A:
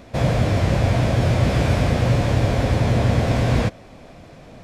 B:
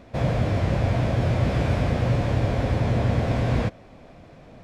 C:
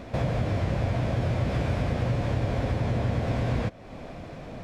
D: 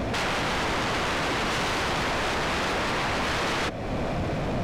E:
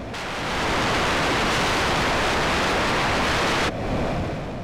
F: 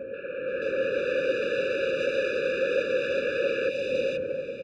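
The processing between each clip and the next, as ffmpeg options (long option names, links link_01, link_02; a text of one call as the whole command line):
ffmpeg -i in.wav -af "highshelf=frequency=4700:gain=-9,volume=-4dB" out.wav
ffmpeg -i in.wav -af "acompressor=threshold=-36dB:ratio=2.5,volume=7dB" out.wav
ffmpeg -i in.wav -af "aeval=exprs='0.188*sin(PI/2*10*val(0)/0.188)':channel_layout=same,volume=-9dB" out.wav
ffmpeg -i in.wav -af "dynaudnorm=framelen=120:gausssize=9:maxgain=9dB,volume=-4dB" out.wav
ffmpeg -i in.wav -filter_complex "[0:a]asplit=3[link_01][link_02][link_03];[link_01]bandpass=frequency=530:width_type=q:width=8,volume=0dB[link_04];[link_02]bandpass=frequency=1840:width_type=q:width=8,volume=-6dB[link_05];[link_03]bandpass=frequency=2480:width_type=q:width=8,volume=-9dB[link_06];[link_04][link_05][link_06]amix=inputs=3:normalize=0,acrossover=split=2400[link_07][link_08];[link_08]adelay=480[link_09];[link_07][link_09]amix=inputs=2:normalize=0,afftfilt=real='re*eq(mod(floor(b*sr/1024/580),2),0)':imag='im*eq(mod(floor(b*sr/1024/580),2),0)':win_size=1024:overlap=0.75,volume=8.5dB" out.wav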